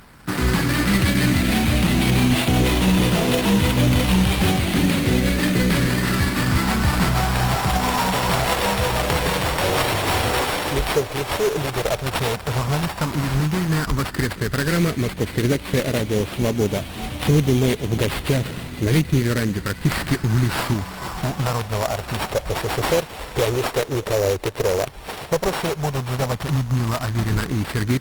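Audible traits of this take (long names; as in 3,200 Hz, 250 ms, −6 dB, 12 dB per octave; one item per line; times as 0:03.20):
a buzz of ramps at a fixed pitch in blocks of 8 samples
phaser sweep stages 4, 0.073 Hz, lowest notch 210–1,400 Hz
aliases and images of a low sample rate 6,400 Hz, jitter 20%
Opus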